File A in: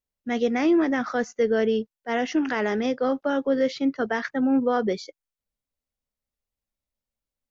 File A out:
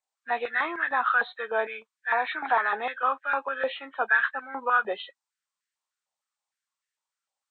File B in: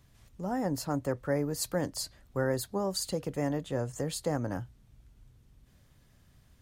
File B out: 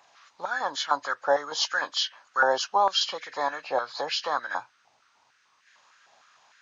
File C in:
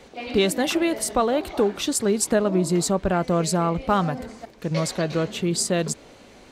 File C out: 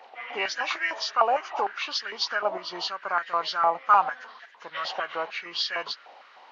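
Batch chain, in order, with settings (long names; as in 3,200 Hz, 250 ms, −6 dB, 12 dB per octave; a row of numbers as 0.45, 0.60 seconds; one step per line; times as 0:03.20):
hearing-aid frequency compression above 1,500 Hz 1.5 to 1
high-pass on a step sequencer 6.6 Hz 790–1,700 Hz
loudness normalisation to −27 LKFS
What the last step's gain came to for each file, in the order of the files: +0.5, +8.5, −3.5 decibels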